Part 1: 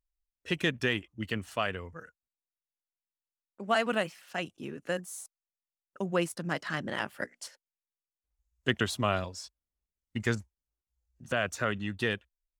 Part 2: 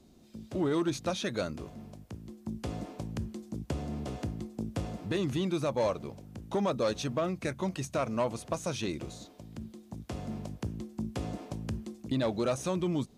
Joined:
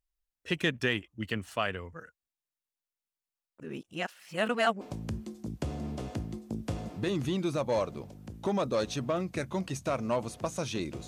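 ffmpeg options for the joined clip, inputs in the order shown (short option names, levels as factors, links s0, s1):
-filter_complex "[0:a]apad=whole_dur=11.07,atrim=end=11.07,asplit=2[s0][s1];[s0]atrim=end=3.602[s2];[s1]atrim=start=3.598:end=4.812,asetpts=PTS-STARTPTS,areverse[s3];[1:a]atrim=start=2.888:end=9.15[s4];[s2][s3]acrossfade=d=0.004:c1=hsin:c2=hsin[s5];[s5][s4]acrossfade=d=0.004:c1=hsin:c2=hsin"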